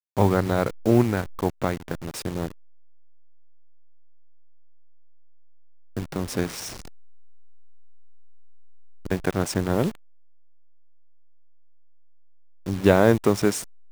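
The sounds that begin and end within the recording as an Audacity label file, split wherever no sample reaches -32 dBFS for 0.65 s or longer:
5.970000	6.820000	sound
9.050000	9.900000	sound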